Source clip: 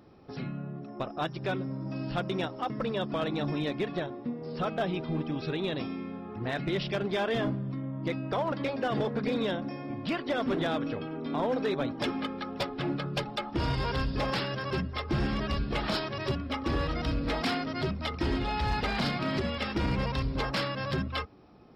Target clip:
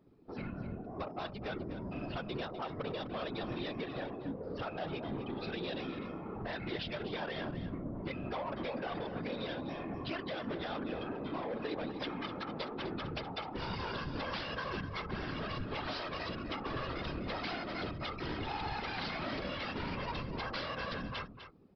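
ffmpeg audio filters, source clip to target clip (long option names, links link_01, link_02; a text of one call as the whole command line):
ffmpeg -i in.wav -filter_complex "[0:a]afftdn=noise_reduction=18:noise_floor=-45,lowshelf=frequency=410:gain=-7.5,acompressor=threshold=-35dB:ratio=16,aresample=11025,asoftclip=type=tanh:threshold=-38dB,aresample=44100,afftfilt=real='hypot(re,im)*cos(2*PI*random(0))':imag='hypot(re,im)*sin(2*PI*random(1))':win_size=512:overlap=0.75,asplit=2[link_01][link_02];[link_02]aecho=0:1:251:0.282[link_03];[link_01][link_03]amix=inputs=2:normalize=0,volume=9.5dB" out.wav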